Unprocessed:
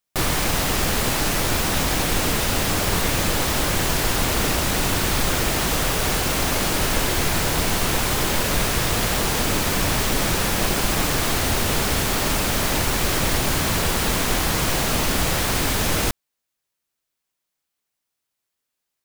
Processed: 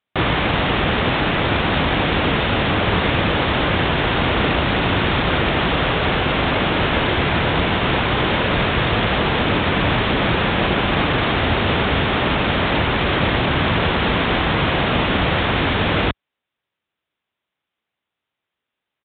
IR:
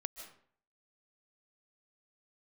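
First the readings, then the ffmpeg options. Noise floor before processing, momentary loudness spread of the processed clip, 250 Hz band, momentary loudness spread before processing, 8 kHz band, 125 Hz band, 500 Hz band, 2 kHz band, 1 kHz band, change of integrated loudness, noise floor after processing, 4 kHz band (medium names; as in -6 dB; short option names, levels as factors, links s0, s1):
-81 dBFS, 0 LU, +5.5 dB, 0 LU, under -40 dB, +4.5 dB, +5.5 dB, +5.5 dB, +5.5 dB, +2.5 dB, -83 dBFS, +2.5 dB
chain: -af "highpass=60,aresample=8000,aresample=44100,volume=1.88"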